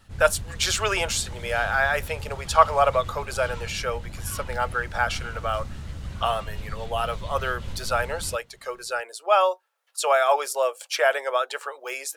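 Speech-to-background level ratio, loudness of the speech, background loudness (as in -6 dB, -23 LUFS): 12.5 dB, -25.0 LUFS, -37.5 LUFS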